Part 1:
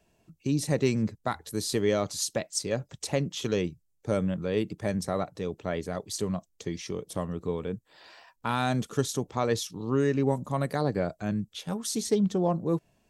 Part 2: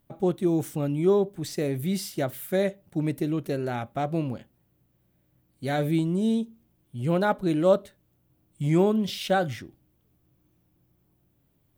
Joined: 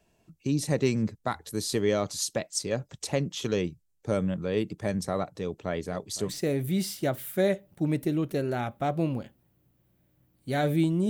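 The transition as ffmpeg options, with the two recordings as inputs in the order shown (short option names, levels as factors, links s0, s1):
-filter_complex "[0:a]asettb=1/sr,asplit=3[s0][s1][s2];[s0]atrim=end=5.314[s3];[s1]atrim=start=5.31:end=6.32,asetpts=PTS-STARTPTS,afade=t=in:d=0.004:c=qsin,afade=t=out:st=1.006:d=0.004:c=qsin,aecho=1:1:512:0.126,atrim=end_sample=44541[s4];[s2]atrim=start=6.316[s5];[s3][s4]acrossfade=d=0.004:c1=hsin:c2=qsin[s6];[s6][s5]acrossfade=d=0.004:c1=qsin:c2=hsin,apad=whole_dur=11.09,atrim=end=11.09,atrim=end=6.32,asetpts=PTS-STARTPTS[s7];[1:a]atrim=start=1.41:end=6.24,asetpts=PTS-STARTPTS[s8];[s7][s8]acrossfade=d=0.06:c1=tri:c2=tri"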